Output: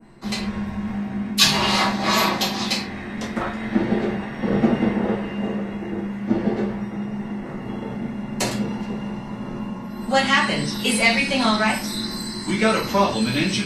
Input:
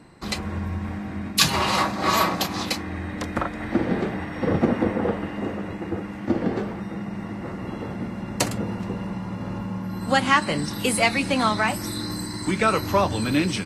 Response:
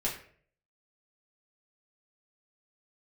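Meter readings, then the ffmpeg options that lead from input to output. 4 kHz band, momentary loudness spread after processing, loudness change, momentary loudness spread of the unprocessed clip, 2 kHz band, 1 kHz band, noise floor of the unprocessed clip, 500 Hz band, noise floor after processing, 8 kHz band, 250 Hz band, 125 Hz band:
+5.0 dB, 13 LU, +2.5 dB, 11 LU, +3.0 dB, +0.5 dB, -34 dBFS, +1.5 dB, -33 dBFS, +1.5 dB, +3.0 dB, 0.0 dB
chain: -filter_complex "[0:a]adynamicequalizer=threshold=0.01:dfrequency=4300:dqfactor=0.77:tfrequency=4300:tqfactor=0.77:attack=5:release=100:ratio=0.375:range=3.5:mode=boostabove:tftype=bell[s0];[1:a]atrim=start_sample=2205,atrim=end_sample=6615[s1];[s0][s1]afir=irnorm=-1:irlink=0,volume=0.562"

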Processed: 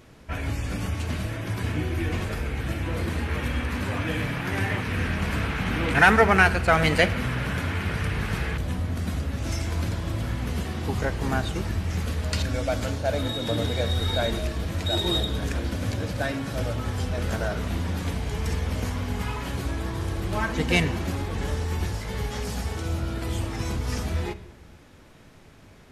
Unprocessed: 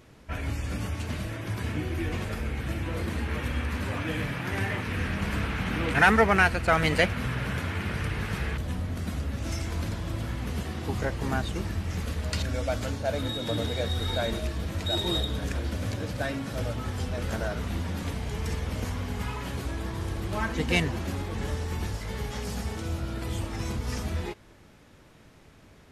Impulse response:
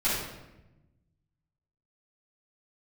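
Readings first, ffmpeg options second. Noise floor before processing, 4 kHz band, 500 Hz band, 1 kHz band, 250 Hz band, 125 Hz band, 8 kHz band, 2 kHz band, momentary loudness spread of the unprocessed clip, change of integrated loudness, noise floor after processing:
-54 dBFS, +3.0 dB, +3.0 dB, +3.0 dB, +2.5 dB, +3.5 dB, +3.0 dB, +3.0 dB, 8 LU, +3.0 dB, -49 dBFS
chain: -filter_complex "[0:a]asplit=2[s0][s1];[1:a]atrim=start_sample=2205[s2];[s1][s2]afir=irnorm=-1:irlink=0,volume=0.0631[s3];[s0][s3]amix=inputs=2:normalize=0,volume=1.33"

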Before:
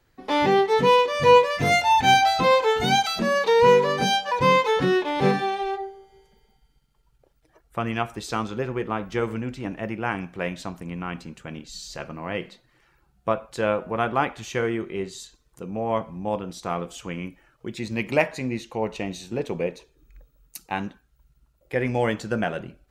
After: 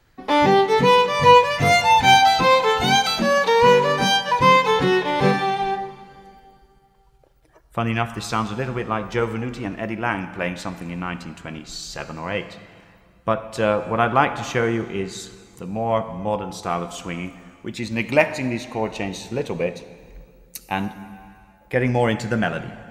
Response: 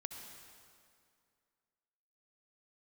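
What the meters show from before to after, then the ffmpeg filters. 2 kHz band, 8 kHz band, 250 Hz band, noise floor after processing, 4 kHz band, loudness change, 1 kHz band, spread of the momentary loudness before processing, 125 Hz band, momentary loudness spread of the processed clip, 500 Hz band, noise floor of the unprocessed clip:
+4.5 dB, +4.5 dB, +3.5 dB, -55 dBFS, +5.0 dB, +3.5 dB, +4.5 dB, 17 LU, +4.5 dB, 17 LU, +2.0 dB, -65 dBFS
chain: -filter_complex "[0:a]asplit=2[s0][s1];[1:a]atrim=start_sample=2205[s2];[s1][s2]afir=irnorm=-1:irlink=0,volume=0.75[s3];[s0][s3]amix=inputs=2:normalize=0,aphaser=in_gain=1:out_gain=1:delay=3.4:decay=0.21:speed=0.14:type=sinusoidal,equalizer=f=390:t=o:w=1:g=-3.5,volume=1.12"

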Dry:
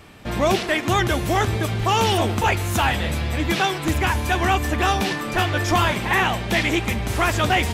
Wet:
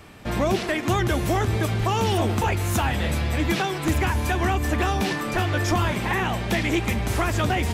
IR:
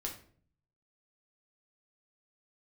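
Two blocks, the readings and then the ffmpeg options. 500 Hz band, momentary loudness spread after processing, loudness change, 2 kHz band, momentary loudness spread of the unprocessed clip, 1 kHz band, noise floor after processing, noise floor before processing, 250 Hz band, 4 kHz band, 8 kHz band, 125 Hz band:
-2.5 dB, 2 LU, -3.0 dB, -5.0 dB, 3 LU, -4.5 dB, -30 dBFS, -29 dBFS, -0.5 dB, -6.0 dB, -3.0 dB, 0.0 dB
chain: -filter_complex "[0:a]equalizer=f=3300:w=1.5:g=-2,acrossover=split=420[s0][s1];[s1]acompressor=threshold=0.0708:ratio=6[s2];[s0][s2]amix=inputs=2:normalize=0,asplit=2[s3][s4];[s4]volume=7.5,asoftclip=hard,volume=0.133,volume=0.501[s5];[s3][s5]amix=inputs=2:normalize=0,volume=0.668"

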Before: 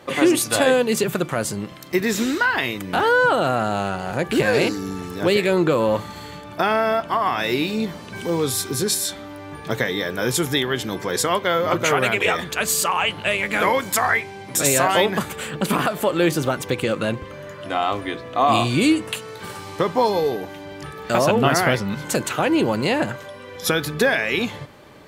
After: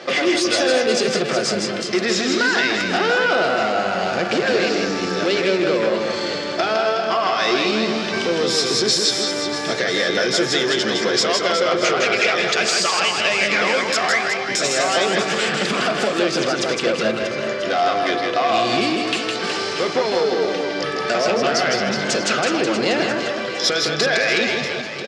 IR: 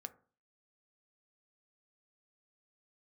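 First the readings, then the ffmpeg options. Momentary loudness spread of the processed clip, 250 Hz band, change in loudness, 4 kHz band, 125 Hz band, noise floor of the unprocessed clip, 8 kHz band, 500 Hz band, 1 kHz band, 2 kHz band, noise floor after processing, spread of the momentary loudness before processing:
5 LU, -0.5 dB, +2.0 dB, +7.0 dB, -5.5 dB, -38 dBFS, +0.5 dB, +2.0 dB, +0.5 dB, +3.5 dB, -25 dBFS, 12 LU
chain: -filter_complex "[0:a]acompressor=threshold=0.0631:ratio=6,asoftclip=type=tanh:threshold=0.0562,highpass=270,equalizer=f=280:t=q:w=4:g=-5,equalizer=f=960:t=q:w=4:g=-9,equalizer=f=5100:t=q:w=4:g=8,lowpass=f=6400:w=0.5412,lowpass=f=6400:w=1.3066,aecho=1:1:160|368|638.4|989.9|1447:0.631|0.398|0.251|0.158|0.1,asplit=2[s0][s1];[1:a]atrim=start_sample=2205,asetrate=61740,aresample=44100[s2];[s1][s2]afir=irnorm=-1:irlink=0,volume=3.16[s3];[s0][s3]amix=inputs=2:normalize=0,volume=1.78"

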